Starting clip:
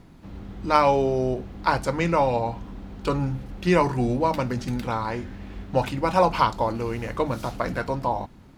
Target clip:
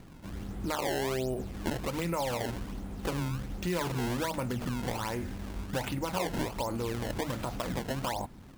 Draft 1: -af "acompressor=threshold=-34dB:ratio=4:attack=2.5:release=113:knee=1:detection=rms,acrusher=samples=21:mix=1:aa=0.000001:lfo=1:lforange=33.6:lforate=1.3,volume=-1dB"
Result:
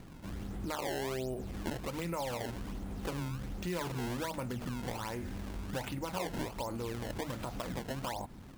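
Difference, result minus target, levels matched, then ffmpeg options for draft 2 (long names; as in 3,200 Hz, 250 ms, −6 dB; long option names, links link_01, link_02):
downward compressor: peak gain reduction +5 dB
-af "acompressor=threshold=-27.5dB:ratio=4:attack=2.5:release=113:knee=1:detection=rms,acrusher=samples=21:mix=1:aa=0.000001:lfo=1:lforange=33.6:lforate=1.3,volume=-1dB"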